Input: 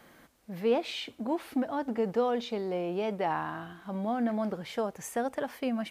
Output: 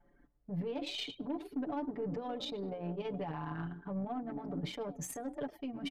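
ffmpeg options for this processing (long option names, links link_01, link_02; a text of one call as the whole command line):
ffmpeg -i in.wav -filter_complex "[0:a]acrossover=split=170|3000[link_01][link_02][link_03];[link_02]acompressor=threshold=-50dB:ratio=2.5[link_04];[link_01][link_04][link_03]amix=inputs=3:normalize=0,asplit=5[link_05][link_06][link_07][link_08][link_09];[link_06]adelay=104,afreqshift=53,volume=-11dB[link_10];[link_07]adelay=208,afreqshift=106,volume=-18.7dB[link_11];[link_08]adelay=312,afreqshift=159,volume=-26.5dB[link_12];[link_09]adelay=416,afreqshift=212,volume=-34.2dB[link_13];[link_05][link_10][link_11][link_12][link_13]amix=inputs=5:normalize=0,alimiter=level_in=14.5dB:limit=-24dB:level=0:latency=1:release=13,volume=-14.5dB,bandreject=frequency=60:width_type=h:width=6,bandreject=frequency=120:width_type=h:width=6,bandreject=frequency=180:width_type=h:width=6,bandreject=frequency=240:width_type=h:width=6,bandreject=frequency=300:width_type=h:width=6,bandreject=frequency=360:width_type=h:width=6,bandreject=frequency=420:width_type=h:width=6,anlmdn=0.0398,aecho=1:1:6.9:0.87,aeval=exprs='0.02*(cos(1*acos(clip(val(0)/0.02,-1,1)))-cos(1*PI/2))+0.000708*(cos(5*acos(clip(val(0)/0.02,-1,1)))-cos(5*PI/2))+0.000447*(cos(6*acos(clip(val(0)/0.02,-1,1)))-cos(6*PI/2))+0.000501*(cos(7*acos(clip(val(0)/0.02,-1,1)))-cos(7*PI/2))':channel_layout=same,volume=7.5dB" out.wav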